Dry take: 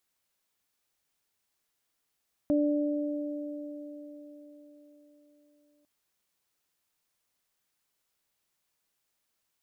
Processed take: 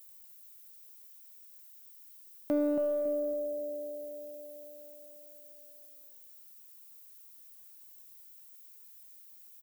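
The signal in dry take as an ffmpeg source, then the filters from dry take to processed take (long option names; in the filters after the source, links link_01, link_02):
-f lavfi -i "aevalsrc='0.075*pow(10,-3*t/4.41)*sin(2*PI*294*t)+0.0422*pow(10,-3*t/4.64)*sin(2*PI*588*t)':duration=3.35:sample_rate=44100"
-filter_complex "[0:a]aemphasis=mode=production:type=riaa,asplit=2[link_01][link_02];[link_02]volume=32dB,asoftclip=hard,volume=-32dB,volume=-5.5dB[link_03];[link_01][link_03]amix=inputs=2:normalize=0,asplit=2[link_04][link_05];[link_05]adelay=277,lowpass=frequency=950:poles=1,volume=-5dB,asplit=2[link_06][link_07];[link_07]adelay=277,lowpass=frequency=950:poles=1,volume=0.37,asplit=2[link_08][link_09];[link_09]adelay=277,lowpass=frequency=950:poles=1,volume=0.37,asplit=2[link_10][link_11];[link_11]adelay=277,lowpass=frequency=950:poles=1,volume=0.37,asplit=2[link_12][link_13];[link_13]adelay=277,lowpass=frequency=950:poles=1,volume=0.37[link_14];[link_04][link_06][link_08][link_10][link_12][link_14]amix=inputs=6:normalize=0"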